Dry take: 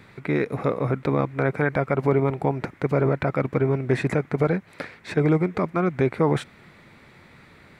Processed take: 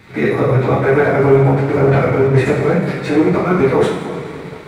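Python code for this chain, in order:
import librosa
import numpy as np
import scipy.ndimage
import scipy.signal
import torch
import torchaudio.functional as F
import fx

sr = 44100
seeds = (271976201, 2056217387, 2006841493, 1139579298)

p1 = fx.reverse_delay(x, sr, ms=344, wet_db=-14)
p2 = fx.level_steps(p1, sr, step_db=13)
p3 = p1 + (p2 * librosa.db_to_amplitude(2.0))
p4 = fx.stretch_vocoder_free(p3, sr, factor=0.6)
p5 = fx.rev_double_slope(p4, sr, seeds[0], early_s=0.56, late_s=3.9, knee_db=-16, drr_db=-5.5)
p6 = fx.leveller(p5, sr, passes=1)
y = p6 * librosa.db_to_amplitude(-1.0)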